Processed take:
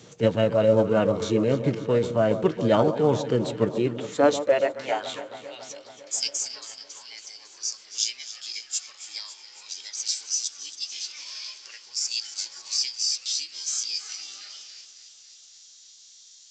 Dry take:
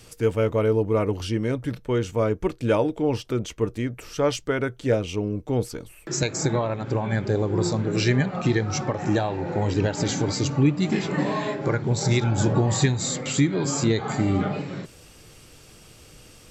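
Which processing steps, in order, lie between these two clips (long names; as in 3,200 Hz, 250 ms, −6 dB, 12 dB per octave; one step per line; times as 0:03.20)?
high-pass filter sweep 160 Hz → 4,000 Hz, 0:03.87–0:05.90
on a send: delay that swaps between a low-pass and a high-pass 138 ms, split 1,000 Hz, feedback 81%, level −12 dB
on the sum: formants moved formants +4 semitones
A-law companding 128 kbit/s 16,000 Hz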